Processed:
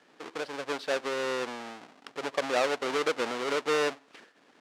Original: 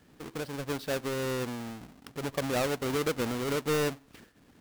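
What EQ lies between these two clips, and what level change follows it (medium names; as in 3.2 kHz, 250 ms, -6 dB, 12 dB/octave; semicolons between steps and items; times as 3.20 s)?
high-pass 470 Hz 12 dB/octave; distance through air 82 m; +5.0 dB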